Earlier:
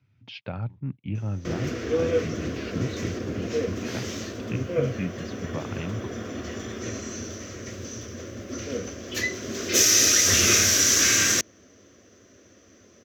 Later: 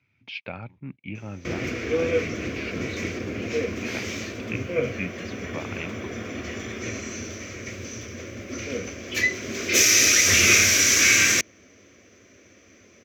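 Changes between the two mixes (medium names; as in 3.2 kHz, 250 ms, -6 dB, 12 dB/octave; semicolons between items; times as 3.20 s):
speech: add peaking EQ 110 Hz -10 dB 1.3 oct; master: add peaking EQ 2.3 kHz +12.5 dB 0.38 oct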